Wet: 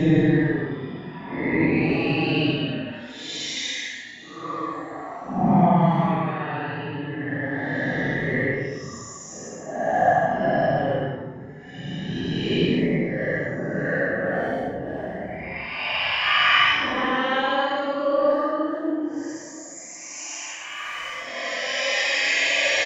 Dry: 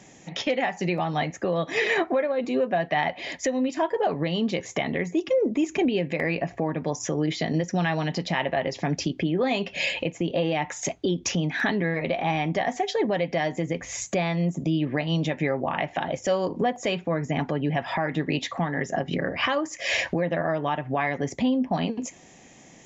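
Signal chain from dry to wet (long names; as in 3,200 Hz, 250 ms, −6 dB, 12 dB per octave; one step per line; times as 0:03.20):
transient designer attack +8 dB, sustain +1 dB
far-end echo of a speakerphone 340 ms, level −13 dB
extreme stretch with random phases 13×, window 0.05 s, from 0:18.17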